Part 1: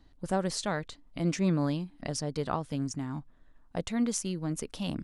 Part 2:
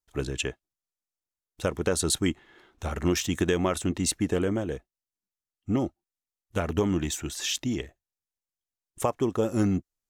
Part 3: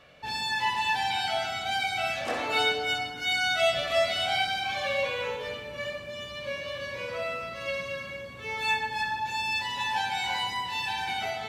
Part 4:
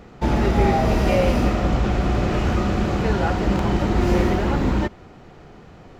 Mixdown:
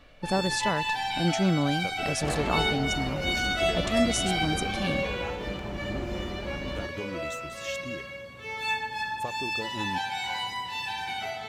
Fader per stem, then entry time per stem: +2.5, -12.0, -2.0, -16.0 dB; 0.00, 0.20, 0.00, 2.00 s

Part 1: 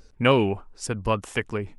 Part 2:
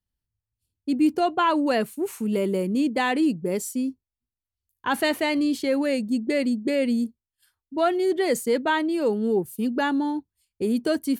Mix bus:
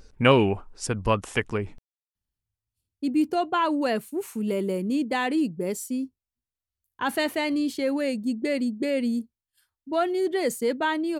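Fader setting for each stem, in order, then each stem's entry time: +1.0, -2.5 dB; 0.00, 2.15 s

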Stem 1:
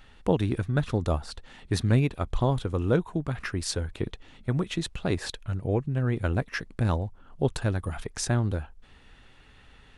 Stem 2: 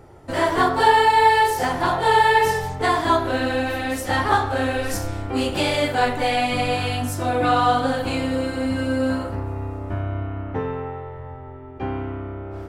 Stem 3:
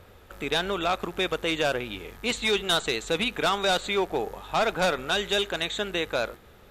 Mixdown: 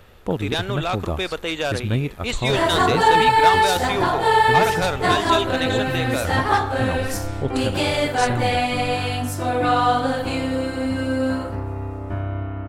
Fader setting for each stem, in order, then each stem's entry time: 0.0, 0.0, +1.0 dB; 0.00, 2.20, 0.00 s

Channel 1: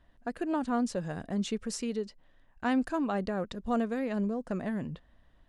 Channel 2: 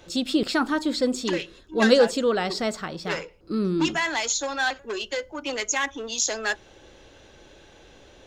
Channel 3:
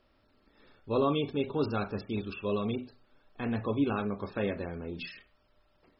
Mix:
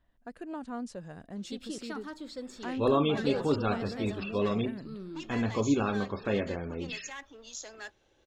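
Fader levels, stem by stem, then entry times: -8.5, -17.5, +2.0 dB; 0.00, 1.35, 1.90 s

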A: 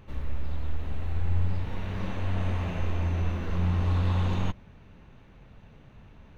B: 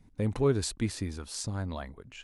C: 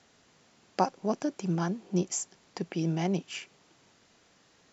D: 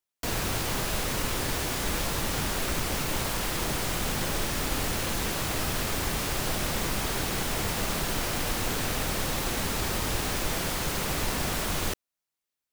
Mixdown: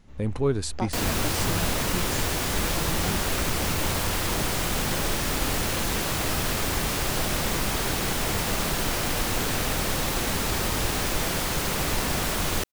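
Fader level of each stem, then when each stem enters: -10.0, +1.5, -6.5, +3.0 dB; 0.00, 0.00, 0.00, 0.70 s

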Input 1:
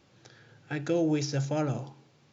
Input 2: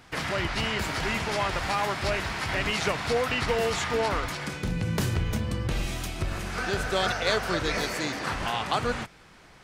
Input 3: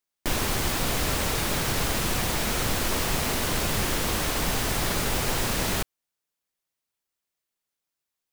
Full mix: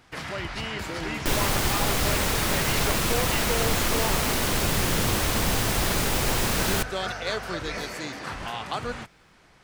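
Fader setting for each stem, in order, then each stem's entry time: -10.5, -4.0, +1.5 dB; 0.00, 0.00, 1.00 s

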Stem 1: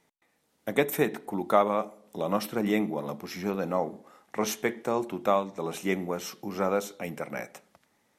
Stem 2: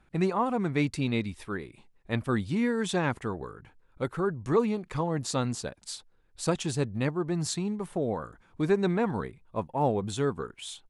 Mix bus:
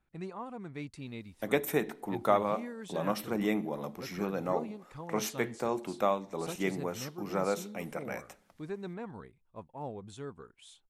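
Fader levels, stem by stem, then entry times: -4.0, -14.5 dB; 0.75, 0.00 s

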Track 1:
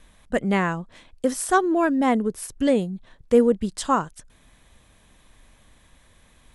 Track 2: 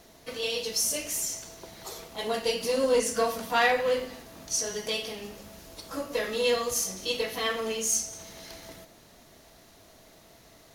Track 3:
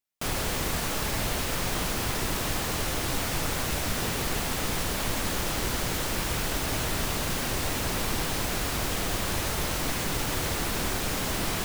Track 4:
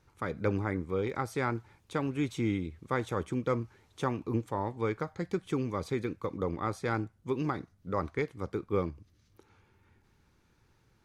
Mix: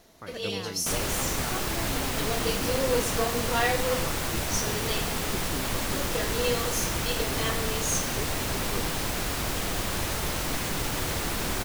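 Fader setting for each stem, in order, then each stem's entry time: -19.0, -3.0, -0.5, -8.5 dB; 0.00, 0.00, 0.65, 0.00 s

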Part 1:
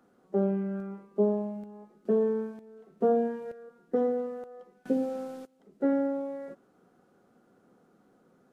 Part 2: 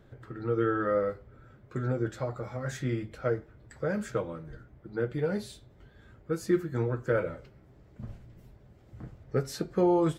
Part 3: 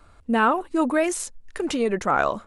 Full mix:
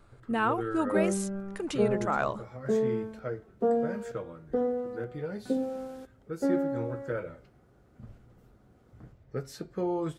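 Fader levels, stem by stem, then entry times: -1.5, -6.5, -8.0 dB; 0.60, 0.00, 0.00 s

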